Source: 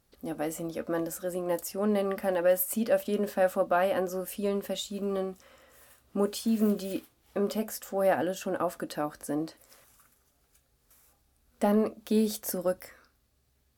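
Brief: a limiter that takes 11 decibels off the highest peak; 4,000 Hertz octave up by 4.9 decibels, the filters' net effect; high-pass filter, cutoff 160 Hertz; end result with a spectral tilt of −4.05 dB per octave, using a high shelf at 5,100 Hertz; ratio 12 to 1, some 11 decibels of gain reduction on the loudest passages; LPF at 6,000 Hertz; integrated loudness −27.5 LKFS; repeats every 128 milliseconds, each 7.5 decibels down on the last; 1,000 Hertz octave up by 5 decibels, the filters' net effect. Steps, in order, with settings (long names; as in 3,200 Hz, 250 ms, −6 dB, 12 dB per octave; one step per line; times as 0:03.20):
high-pass filter 160 Hz
low-pass filter 6,000 Hz
parametric band 1,000 Hz +7 dB
parametric band 4,000 Hz +5 dB
high-shelf EQ 5,100 Hz +3.5 dB
downward compressor 12 to 1, threshold −28 dBFS
brickwall limiter −28 dBFS
repeating echo 128 ms, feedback 42%, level −7.5 dB
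level +10 dB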